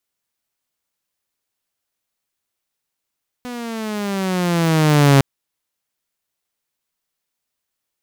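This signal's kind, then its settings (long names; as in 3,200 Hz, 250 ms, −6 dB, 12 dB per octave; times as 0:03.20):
pitch glide with a swell saw, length 1.76 s, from 249 Hz, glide −10.5 semitones, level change +19.5 dB, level −5.5 dB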